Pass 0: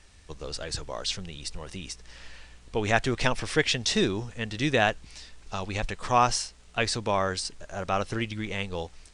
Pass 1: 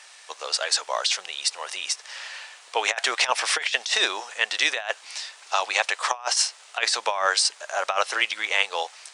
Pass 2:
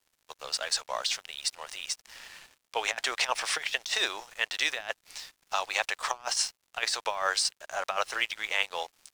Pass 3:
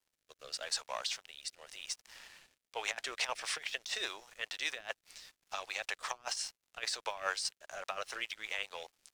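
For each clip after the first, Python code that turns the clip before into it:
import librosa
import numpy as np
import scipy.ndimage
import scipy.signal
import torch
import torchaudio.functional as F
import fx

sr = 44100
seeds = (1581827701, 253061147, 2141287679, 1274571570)

y1 = scipy.signal.sosfilt(scipy.signal.butter(4, 670.0, 'highpass', fs=sr, output='sos'), x)
y1 = fx.over_compress(y1, sr, threshold_db=-31.0, ratio=-0.5)
y1 = F.gain(torch.from_numpy(y1), 9.0).numpy()
y2 = fx.dmg_noise_colour(y1, sr, seeds[0], colour='brown', level_db=-59.0)
y2 = np.sign(y2) * np.maximum(np.abs(y2) - 10.0 ** (-41.5 / 20.0), 0.0)
y2 = F.gain(torch.from_numpy(y2), -5.5).numpy()
y3 = fx.rattle_buzz(y2, sr, strikes_db=-49.0, level_db=-29.0)
y3 = fx.rotary_switch(y3, sr, hz=0.85, then_hz=5.0, switch_at_s=2.57)
y3 = F.gain(torch.from_numpy(y3), -5.5).numpy()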